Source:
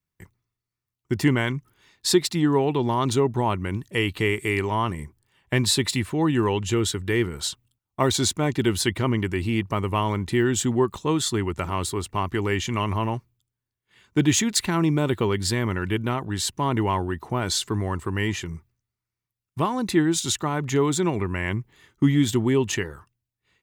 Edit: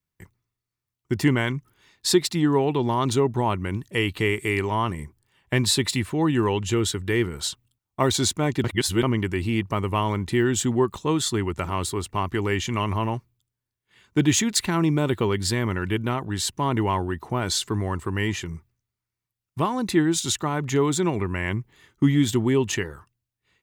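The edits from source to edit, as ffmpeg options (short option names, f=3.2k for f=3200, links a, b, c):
-filter_complex "[0:a]asplit=3[a][b][c];[a]atrim=end=8.642[d];[b]atrim=start=8.638:end=9.032,asetpts=PTS-STARTPTS,areverse[e];[c]atrim=start=9.028[f];[d][e]acrossfade=d=0.004:c1=hsin:c2=hsin[g];[g][f]acrossfade=d=0.004:c1=hsin:c2=hsin"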